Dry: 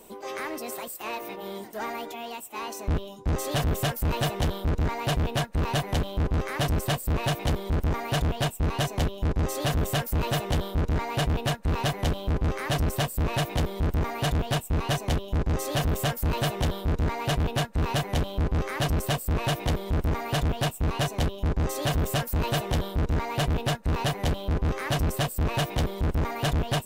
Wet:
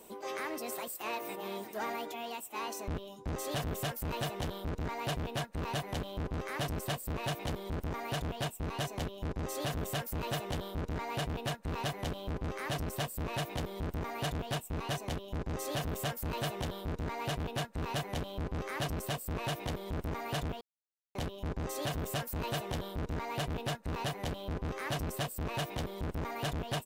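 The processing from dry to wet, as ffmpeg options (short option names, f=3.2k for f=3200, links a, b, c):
-filter_complex "[0:a]asplit=2[a][b];[b]afade=t=in:st=0.85:d=0.01,afade=t=out:st=1.57:d=0.01,aecho=0:1:390|780:0.281838|0.0422757[c];[a][c]amix=inputs=2:normalize=0,asplit=3[d][e][f];[d]atrim=end=20.61,asetpts=PTS-STARTPTS,afade=t=out:st=20.606:d=0.004:c=hsin[g];[e]atrim=start=20.61:end=21.15,asetpts=PTS-STARTPTS,volume=0[h];[f]atrim=start=21.15,asetpts=PTS-STARTPTS,afade=t=in:d=0.004:c=hsin[i];[g][h][i]concat=n=3:v=0:a=1,lowshelf=f=84:g=-8.5,alimiter=limit=-23.5dB:level=0:latency=1:release=379,volume=-3.5dB"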